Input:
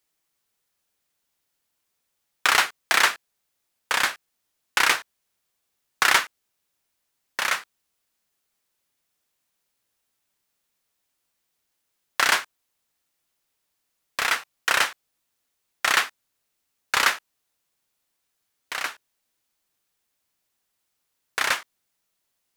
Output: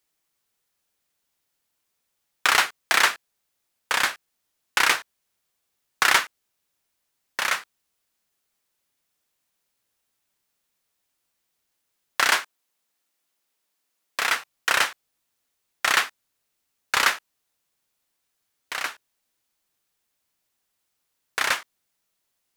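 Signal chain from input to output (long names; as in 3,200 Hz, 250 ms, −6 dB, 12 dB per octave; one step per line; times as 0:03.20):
0:12.28–0:14.26: high-pass filter 190 Hz 12 dB per octave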